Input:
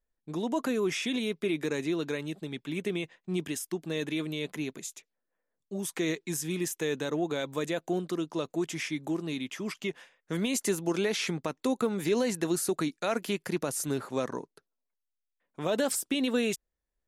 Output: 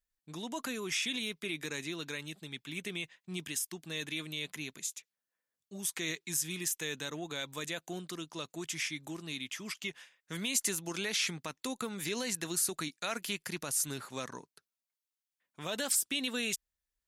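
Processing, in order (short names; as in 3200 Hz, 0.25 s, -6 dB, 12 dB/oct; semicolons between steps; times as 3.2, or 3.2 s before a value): passive tone stack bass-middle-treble 5-5-5; gain +8.5 dB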